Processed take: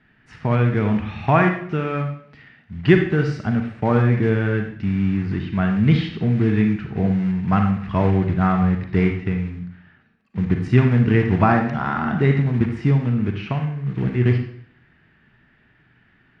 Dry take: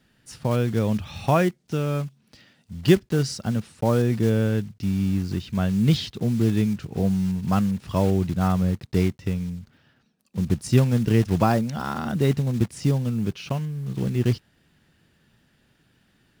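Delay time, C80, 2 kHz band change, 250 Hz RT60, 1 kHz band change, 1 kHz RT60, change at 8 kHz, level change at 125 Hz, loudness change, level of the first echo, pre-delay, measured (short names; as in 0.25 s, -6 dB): none, 9.5 dB, +9.0 dB, 0.70 s, +6.0 dB, 0.60 s, under -15 dB, +4.0 dB, +3.5 dB, none, 36 ms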